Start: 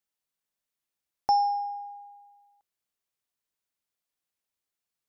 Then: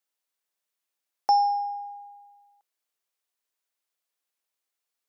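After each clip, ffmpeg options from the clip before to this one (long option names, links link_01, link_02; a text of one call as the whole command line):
ffmpeg -i in.wav -af "highpass=360,volume=2.5dB" out.wav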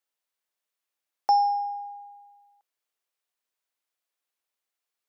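ffmpeg -i in.wav -af "bass=frequency=250:gain=-6,treble=frequency=4000:gain=-3" out.wav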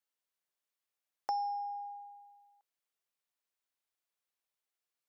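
ffmpeg -i in.wav -af "acompressor=threshold=-34dB:ratio=2,volume=-5dB" out.wav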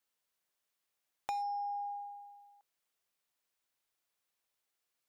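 ffmpeg -i in.wav -af "asoftclip=type=hard:threshold=-31.5dB,acompressor=threshold=-41dB:ratio=4,volume=5dB" out.wav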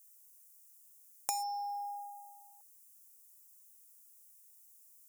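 ffmpeg -i in.wav -af "aexciter=amount=9.3:drive=8.8:freq=5800,volume=-1dB" out.wav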